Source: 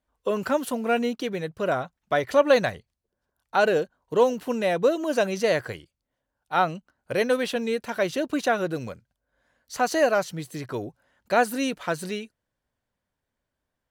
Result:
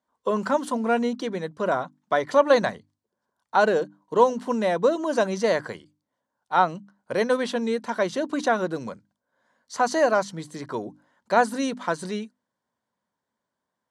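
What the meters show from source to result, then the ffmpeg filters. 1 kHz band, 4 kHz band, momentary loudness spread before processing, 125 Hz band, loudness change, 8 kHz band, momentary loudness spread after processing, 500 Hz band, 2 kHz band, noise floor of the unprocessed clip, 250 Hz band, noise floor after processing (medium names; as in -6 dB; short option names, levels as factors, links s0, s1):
+3.0 dB, -1.5 dB, 12 LU, -1.5 dB, +1.0 dB, -1.0 dB, 13 LU, +0.5 dB, -0.5 dB, -84 dBFS, +1.0 dB, -84 dBFS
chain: -af "highpass=160,equalizer=f=210:t=q:w=4:g=6,equalizer=f=990:t=q:w=4:g=8,equalizer=f=2600:t=q:w=4:g=-8,lowpass=f=9300:w=0.5412,lowpass=f=9300:w=1.3066,bandreject=f=50:t=h:w=6,bandreject=f=100:t=h:w=6,bandreject=f=150:t=h:w=6,bandreject=f=200:t=h:w=6,bandreject=f=250:t=h:w=6,bandreject=f=300:t=h:w=6"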